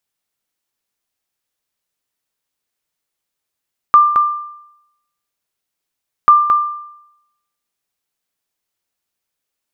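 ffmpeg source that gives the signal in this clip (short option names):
-f lavfi -i "aevalsrc='0.841*(sin(2*PI*1190*mod(t,2.34))*exp(-6.91*mod(t,2.34)/0.82)+0.501*sin(2*PI*1190*max(mod(t,2.34)-0.22,0))*exp(-6.91*max(mod(t,2.34)-0.22,0)/0.82))':d=4.68:s=44100"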